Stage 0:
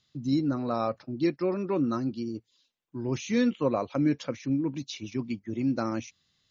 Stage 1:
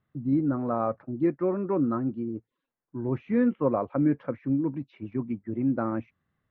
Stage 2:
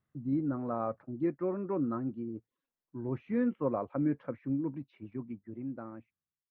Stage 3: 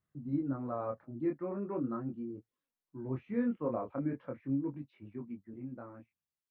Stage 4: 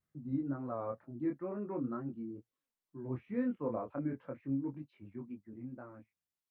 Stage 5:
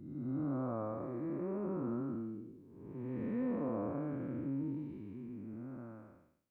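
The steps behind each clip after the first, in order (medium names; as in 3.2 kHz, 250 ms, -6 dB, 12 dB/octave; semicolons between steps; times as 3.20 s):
low-pass 1.7 kHz 24 dB/octave; trim +1.5 dB
fade out at the end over 1.82 s; trim -6.5 dB
chorus 0.4 Hz, delay 20 ms, depth 6.2 ms
vibrato 2.1 Hz 73 cents; trim -2 dB
spectral blur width 437 ms; trim +4.5 dB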